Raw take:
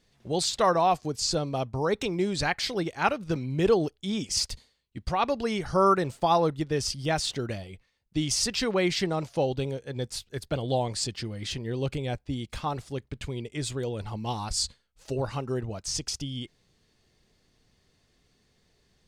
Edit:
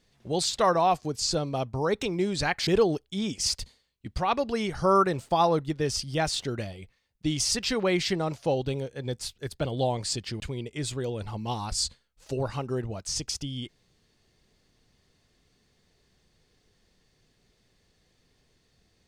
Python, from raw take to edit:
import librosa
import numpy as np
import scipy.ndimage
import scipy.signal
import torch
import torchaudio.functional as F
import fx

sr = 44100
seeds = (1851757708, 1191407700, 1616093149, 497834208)

y = fx.edit(x, sr, fx.cut(start_s=2.67, length_s=0.91),
    fx.cut(start_s=11.31, length_s=1.88), tone=tone)